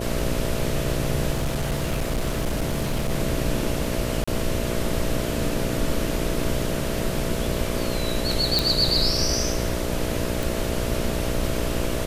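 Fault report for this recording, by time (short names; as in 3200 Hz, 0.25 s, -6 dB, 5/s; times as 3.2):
buzz 60 Hz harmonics 11 -29 dBFS
1.33–3.12 clipped -20 dBFS
4.24–4.28 gap 35 ms
8.59 pop
10.43 pop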